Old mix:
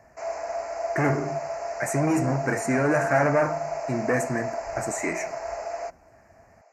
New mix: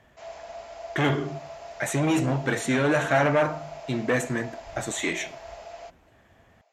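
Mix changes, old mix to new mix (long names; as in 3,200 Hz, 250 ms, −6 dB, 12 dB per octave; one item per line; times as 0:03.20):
background −9.5 dB
master: remove Butterworth band-reject 3,400 Hz, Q 1.2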